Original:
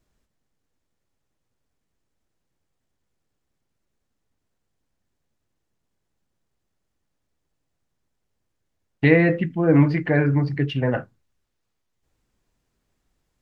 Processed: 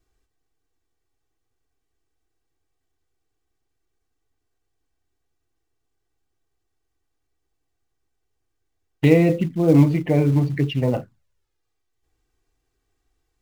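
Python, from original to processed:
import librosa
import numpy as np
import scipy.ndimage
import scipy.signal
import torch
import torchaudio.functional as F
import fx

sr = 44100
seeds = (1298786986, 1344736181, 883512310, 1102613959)

p1 = fx.env_flanger(x, sr, rest_ms=2.6, full_db=-19.0)
p2 = fx.quant_float(p1, sr, bits=2)
p3 = p1 + (p2 * librosa.db_to_amplitude(-7.5))
y = p3 * librosa.db_to_amplitude(-1.0)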